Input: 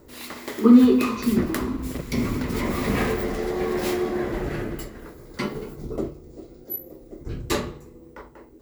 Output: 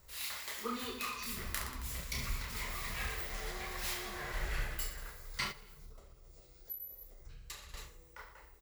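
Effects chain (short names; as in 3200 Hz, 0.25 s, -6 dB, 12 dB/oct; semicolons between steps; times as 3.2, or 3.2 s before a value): reverse bouncing-ball echo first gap 30 ms, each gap 1.3×, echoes 5; flange 1.3 Hz, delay 0.2 ms, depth 6.9 ms, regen +69%; 5.51–7.74 compressor 6:1, threshold -44 dBFS, peak gain reduction 20 dB; passive tone stack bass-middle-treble 10-0-10; vocal rider within 5 dB 0.5 s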